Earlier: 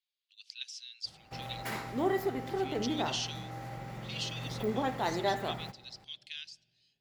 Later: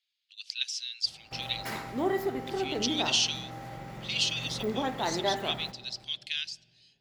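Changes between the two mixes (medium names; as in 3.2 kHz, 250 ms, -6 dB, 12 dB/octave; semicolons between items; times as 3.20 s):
speech +10.0 dB; background: send +10.5 dB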